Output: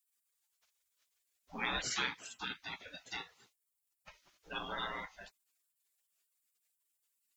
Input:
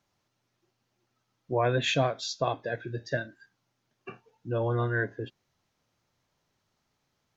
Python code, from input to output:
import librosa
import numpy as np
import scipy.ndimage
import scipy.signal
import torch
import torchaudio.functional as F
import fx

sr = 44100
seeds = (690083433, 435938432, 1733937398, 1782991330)

y = fx.highpass(x, sr, hz=210.0, slope=6, at=(1.89, 4.09))
y = fx.spec_gate(y, sr, threshold_db=-25, keep='weak')
y = y * librosa.db_to_amplitude(10.5)